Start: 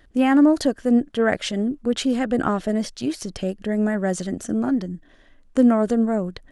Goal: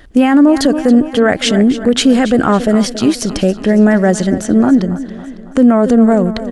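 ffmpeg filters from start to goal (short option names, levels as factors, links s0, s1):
-filter_complex "[0:a]asettb=1/sr,asplit=3[s0][s1][s2];[s0]atrim=end=3.524[s3];[s1]atrim=start=3.52:end=6.01,asetpts=PTS-STARTPTS,afade=t=in:d=0.004:c=qsin,afade=t=out:st=2.486:d=0.004:c=qsin,highshelf=f=5900:g=-6[s4];[s2]atrim=start=6.006[s5];[s3][s4]acrossfade=d=0.004:c1=hsin:c2=qsin[s6];[s6][s5]acrossfade=d=0.004:c1=qsin:c2=hsin,aecho=1:1:277|554|831|1108|1385:0.168|0.0907|0.049|0.0264|0.0143,alimiter=level_in=5.01:limit=0.891:release=50:level=0:latency=1,volume=0.891"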